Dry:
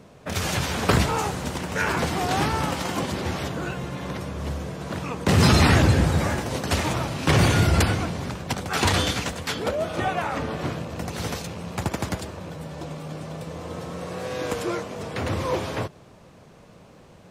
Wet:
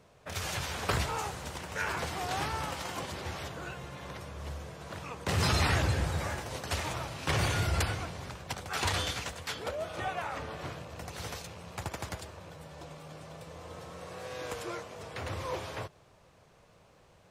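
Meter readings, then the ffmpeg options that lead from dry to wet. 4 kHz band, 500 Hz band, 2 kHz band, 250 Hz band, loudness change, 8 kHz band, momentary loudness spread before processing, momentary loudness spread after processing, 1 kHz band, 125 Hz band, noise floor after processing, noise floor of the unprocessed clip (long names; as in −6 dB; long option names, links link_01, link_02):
−8.0 dB, −11.0 dB, −8.0 dB, −15.5 dB, −10.0 dB, −8.0 dB, 15 LU, 16 LU, −9.0 dB, −11.5 dB, −61 dBFS, −50 dBFS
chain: -af "equalizer=frequency=230:width_type=o:width=1.5:gain=-9.5,volume=-8dB"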